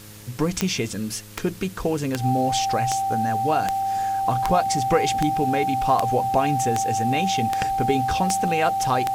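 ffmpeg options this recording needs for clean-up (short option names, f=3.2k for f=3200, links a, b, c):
-af "adeclick=t=4,bandreject=f=104.8:t=h:w=4,bandreject=f=209.6:t=h:w=4,bandreject=f=314.4:t=h:w=4,bandreject=f=419.2:t=h:w=4,bandreject=f=524:t=h:w=4,bandreject=f=780:w=30,afwtdn=0.0056"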